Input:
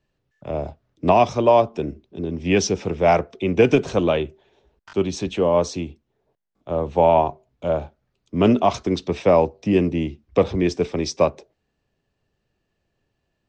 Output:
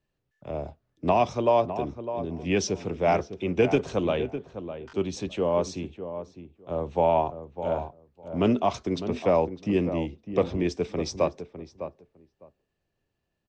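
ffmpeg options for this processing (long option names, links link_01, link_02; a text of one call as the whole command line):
ffmpeg -i in.wav -filter_complex "[0:a]asplit=2[link_01][link_02];[link_02]adelay=605,lowpass=frequency=1400:poles=1,volume=-10dB,asplit=2[link_03][link_04];[link_04]adelay=605,lowpass=frequency=1400:poles=1,volume=0.16[link_05];[link_01][link_03][link_05]amix=inputs=3:normalize=0,volume=-6.5dB" out.wav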